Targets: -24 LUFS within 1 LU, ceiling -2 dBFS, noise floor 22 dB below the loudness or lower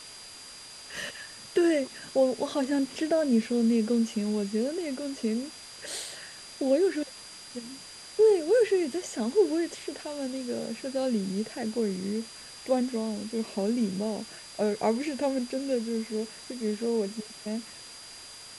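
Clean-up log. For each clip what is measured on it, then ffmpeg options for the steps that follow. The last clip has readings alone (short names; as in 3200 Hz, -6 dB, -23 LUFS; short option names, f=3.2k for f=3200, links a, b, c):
steady tone 4800 Hz; tone level -47 dBFS; noise floor -46 dBFS; noise floor target -51 dBFS; loudness -29.0 LUFS; peak -12.5 dBFS; loudness target -24.0 LUFS
-> -af "bandreject=f=4.8k:w=30"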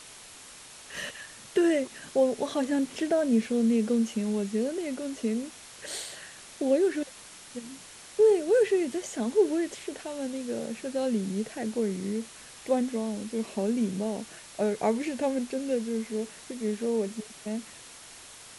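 steady tone none; noise floor -48 dBFS; noise floor target -51 dBFS
-> -af "afftdn=nr=6:nf=-48"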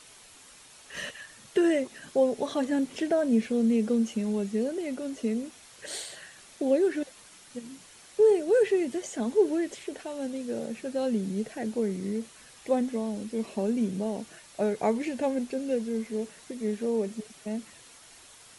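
noise floor -53 dBFS; loudness -29.0 LUFS; peak -13.0 dBFS; loudness target -24.0 LUFS
-> -af "volume=5dB"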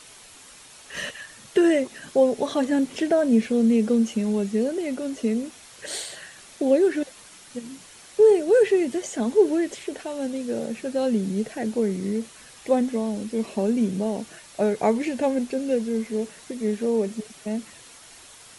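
loudness -24.0 LUFS; peak -8.0 dBFS; noise floor -48 dBFS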